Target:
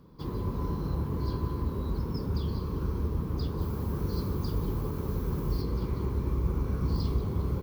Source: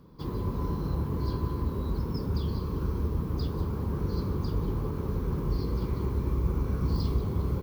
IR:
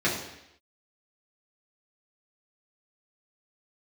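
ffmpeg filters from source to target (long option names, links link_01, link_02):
-filter_complex "[0:a]asettb=1/sr,asplit=3[link_01][link_02][link_03];[link_01]atrim=end=3.614[link_04];[link_02]atrim=start=3.61:end=5.62,asetpts=PTS-STARTPTS,afade=type=in:duration=0.004:curve=qsin,afade=type=out:start_time=2.006:duration=0.004:curve=qsin,highshelf=frequency=6300:gain=9.5[link_05];[link_03]atrim=start=5.616[link_06];[link_04][link_05]acrossfade=duration=0.004:curve1=hsin:curve2=qsin[link_07];[link_07][link_06]acrossfade=duration=0.004:curve1=qsin:curve2=hsin,volume=-1dB"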